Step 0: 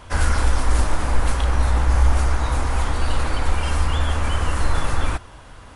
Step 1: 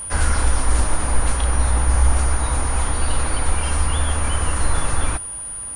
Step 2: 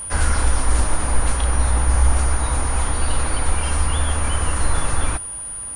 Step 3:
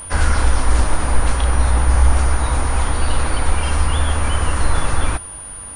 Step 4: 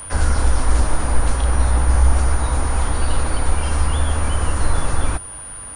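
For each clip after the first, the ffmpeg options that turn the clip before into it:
ffmpeg -i in.wav -af "aeval=exprs='val(0)+0.0398*sin(2*PI*9500*n/s)':channel_layout=same" out.wav
ffmpeg -i in.wav -af anull out.wav
ffmpeg -i in.wav -filter_complex "[0:a]acrossover=split=7200[link_01][link_02];[link_02]acompressor=threshold=-41dB:ratio=4:attack=1:release=60[link_03];[link_01][link_03]amix=inputs=2:normalize=0,volume=3dB" out.wav
ffmpeg -i in.wav -filter_complex "[0:a]equalizer=frequency=1500:width=1.5:gain=2.5,acrossover=split=180|930|4100[link_01][link_02][link_03][link_04];[link_03]alimiter=level_in=1.5dB:limit=-24dB:level=0:latency=1:release=192,volume=-1.5dB[link_05];[link_01][link_02][link_05][link_04]amix=inputs=4:normalize=0,volume=-1dB" out.wav

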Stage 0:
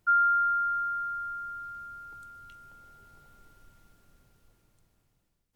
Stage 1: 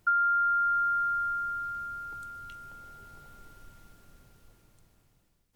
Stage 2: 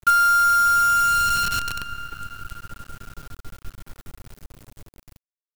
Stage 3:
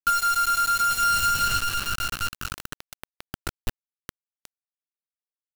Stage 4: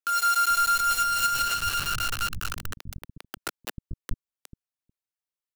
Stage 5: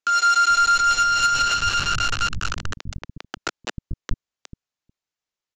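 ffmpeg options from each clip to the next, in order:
ffmpeg -i in.wav -af "acompressor=threshold=-30dB:ratio=5,volume=5.5dB" out.wav
ffmpeg -i in.wav -af "lowshelf=frequency=250:gain=11,acrusher=bits=6:dc=4:mix=0:aa=0.000001,volume=8.5dB" out.wav
ffmpeg -i in.wav -af "flanger=delay=18.5:depth=4.9:speed=0.46,acompressor=threshold=-24dB:ratio=10,acrusher=bits=4:mix=0:aa=0.000001,volume=4dB" out.wav
ffmpeg -i in.wav -filter_complex "[0:a]alimiter=limit=-18.5dB:level=0:latency=1:release=82,acrossover=split=260[link_01][link_02];[link_01]adelay=440[link_03];[link_03][link_02]amix=inputs=2:normalize=0" out.wav
ffmpeg -i in.wav -af "aresample=16000,aresample=44100,asoftclip=type=tanh:threshold=-16.5dB,volume=7dB" out.wav

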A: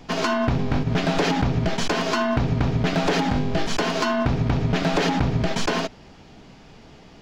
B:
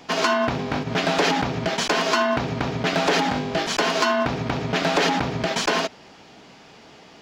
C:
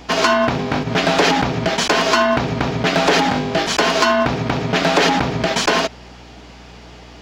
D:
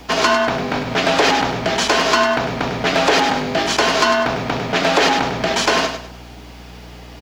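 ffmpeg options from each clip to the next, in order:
ffmpeg -i in.wav -af "highpass=frequency=450:poles=1,volume=4dB" out.wav
ffmpeg -i in.wav -af "aeval=exprs='val(0)+0.00447*(sin(2*PI*60*n/s)+sin(2*PI*2*60*n/s)/2+sin(2*PI*3*60*n/s)/3+sin(2*PI*4*60*n/s)/4+sin(2*PI*5*60*n/s)/5)':channel_layout=same,volume=5.5dB" out.wav
ffmpeg -i in.wav -filter_complex "[0:a]acrossover=split=300|5000[link_01][link_02][link_03];[link_01]volume=28dB,asoftclip=hard,volume=-28dB[link_04];[link_04][link_02][link_03]amix=inputs=3:normalize=0,acrusher=bits=8:mix=0:aa=0.000001,aecho=1:1:100|200|300|400:0.398|0.123|0.0383|0.0119" out.wav

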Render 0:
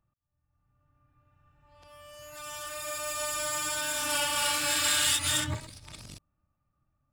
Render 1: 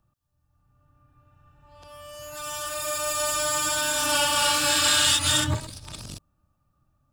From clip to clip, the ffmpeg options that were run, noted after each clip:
ffmpeg -i in.wav -filter_complex "[0:a]equalizer=frequency=2100:width_type=o:width=0.43:gain=-7.5,acrossover=split=590|7700[link_01][link_02][link_03];[link_03]alimiter=level_in=8dB:limit=-24dB:level=0:latency=1:release=91,volume=-8dB[link_04];[link_01][link_02][link_04]amix=inputs=3:normalize=0,volume=7.5dB" out.wav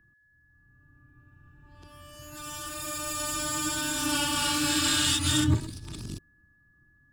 ffmpeg -i in.wav -af "aeval=exprs='val(0)+0.00141*sin(2*PI*1700*n/s)':channel_layout=same,lowshelf=frequency=450:width_type=q:width=3:gain=7,volume=-5dB" out.wav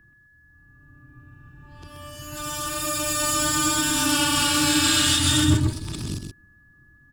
ffmpeg -i in.wav -filter_complex "[0:a]aecho=1:1:129:0.501,asplit=2[link_01][link_02];[link_02]alimiter=limit=-19.5dB:level=0:latency=1:release=305,volume=2.5dB[link_03];[link_01][link_03]amix=inputs=2:normalize=0" out.wav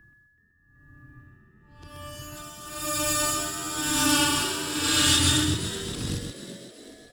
ffmpeg -i in.wav -filter_complex "[0:a]tremolo=f=0.97:d=0.79,asplit=2[link_01][link_02];[link_02]asplit=5[link_03][link_04][link_05][link_06][link_07];[link_03]adelay=378,afreqshift=86,volume=-12dB[link_08];[link_04]adelay=756,afreqshift=172,volume=-18dB[link_09];[link_05]adelay=1134,afreqshift=258,volume=-24dB[link_10];[link_06]adelay=1512,afreqshift=344,volume=-30.1dB[link_11];[link_07]adelay=1890,afreqshift=430,volume=-36.1dB[link_12];[link_08][link_09][link_10][link_11][link_12]amix=inputs=5:normalize=0[link_13];[link_01][link_13]amix=inputs=2:normalize=0" out.wav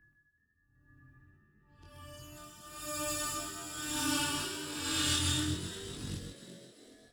ffmpeg -i in.wav -af "flanger=delay=20:depth=3.9:speed=0.66,volume=-7.5dB" out.wav

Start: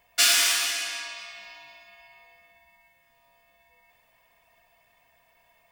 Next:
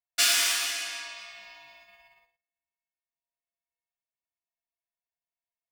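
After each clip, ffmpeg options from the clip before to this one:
ffmpeg -i in.wav -af "agate=range=-36dB:threshold=-52dB:ratio=16:detection=peak,volume=-3dB" out.wav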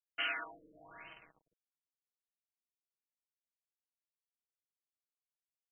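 ffmpeg -i in.wav -af "aeval=exprs='val(0)*gte(abs(val(0)),0.0119)':channel_layout=same,aecho=1:1:6.3:0.59,afftfilt=real='re*lt(b*sr/1024,570*pow(3200/570,0.5+0.5*sin(2*PI*1.1*pts/sr)))':imag='im*lt(b*sr/1024,570*pow(3200/570,0.5+0.5*sin(2*PI*1.1*pts/sr)))':win_size=1024:overlap=0.75,volume=-8dB" out.wav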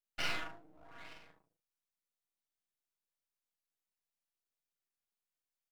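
ffmpeg -i in.wav -af "aeval=exprs='max(val(0),0)':channel_layout=same,aecho=1:1:38|74:0.596|0.316,volume=2dB" out.wav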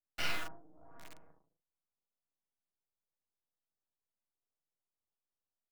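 ffmpeg -i in.wav -filter_complex "[0:a]acrossover=split=130|1300[link_01][link_02][link_03];[link_01]asplit=2[link_04][link_05];[link_05]adelay=12,volume=-2dB[link_06];[link_04][link_06]amix=inputs=2:normalize=0[link_07];[link_03]acrusher=bits=7:mix=0:aa=0.000001[link_08];[link_07][link_02][link_08]amix=inputs=3:normalize=0" out.wav

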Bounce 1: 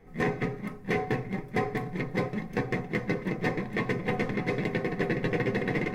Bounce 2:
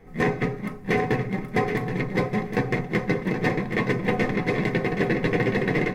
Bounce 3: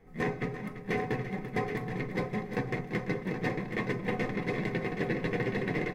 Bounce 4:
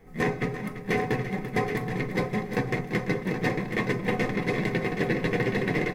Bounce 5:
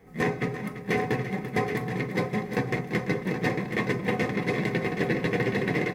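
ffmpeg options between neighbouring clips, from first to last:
ffmpeg -i in.wav -af "aecho=1:1:774|1548|2322:0.398|0.0637|0.0102,volume=5dB" out.wav
ffmpeg -i in.wav -af "aecho=1:1:340:0.251,volume=-8.5dB" out.wav
ffmpeg -i in.wav -af "highshelf=frequency=5400:gain=6.5,volume=5dB" out.wav
ffmpeg -i in.wav -af "highpass=62" out.wav

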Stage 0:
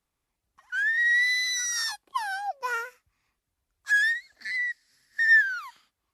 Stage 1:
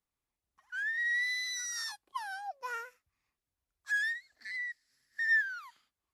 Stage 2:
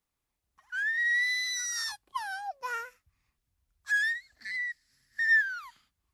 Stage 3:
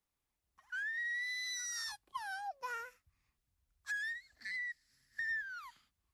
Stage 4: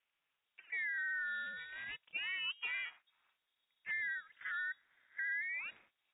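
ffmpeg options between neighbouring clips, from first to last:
ffmpeg -i in.wav -af "bandreject=frequency=50:width_type=h:width=6,bandreject=frequency=100:width_type=h:width=6,bandreject=frequency=150:width_type=h:width=6,bandreject=frequency=200:width_type=h:width=6,volume=-9dB" out.wav
ffmpeg -i in.wav -af "asubboost=boost=3.5:cutoff=210,volume=4.5dB" out.wav
ffmpeg -i in.wav -filter_complex "[0:a]acrossover=split=290[link_01][link_02];[link_02]acompressor=threshold=-35dB:ratio=4[link_03];[link_01][link_03]amix=inputs=2:normalize=0,volume=-3.5dB" out.wav
ffmpeg -i in.wav -filter_complex "[0:a]asplit=2[link_01][link_02];[link_02]highpass=frequency=720:poles=1,volume=17dB,asoftclip=type=tanh:threshold=-30dB[link_03];[link_01][link_03]amix=inputs=2:normalize=0,lowpass=frequency=2400:poles=1,volume=-6dB,lowpass=frequency=3100:width_type=q:width=0.5098,lowpass=frequency=3100:width_type=q:width=0.6013,lowpass=frequency=3100:width_type=q:width=0.9,lowpass=frequency=3100:width_type=q:width=2.563,afreqshift=-3600,aeval=exprs='val(0)*sin(2*PI*170*n/s)':channel_layout=same,volume=1dB" out.wav

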